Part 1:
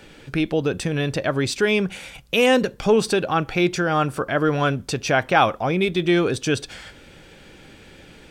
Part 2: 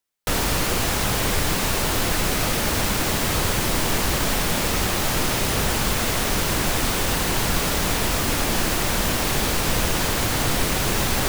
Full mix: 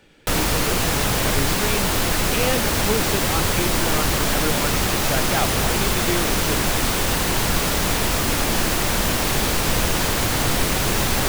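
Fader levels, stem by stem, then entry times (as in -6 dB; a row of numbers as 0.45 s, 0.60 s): -8.0 dB, +1.5 dB; 0.00 s, 0.00 s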